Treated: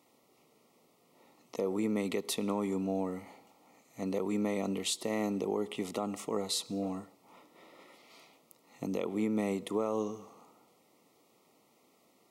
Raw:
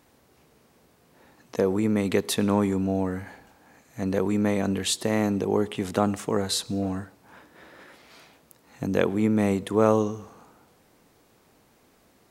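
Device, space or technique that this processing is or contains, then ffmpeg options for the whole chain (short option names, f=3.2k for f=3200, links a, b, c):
PA system with an anti-feedback notch: -af "highpass=200,asuperstop=centerf=1600:order=8:qfactor=3.3,alimiter=limit=-16.5dB:level=0:latency=1:release=157,volume=-5.5dB"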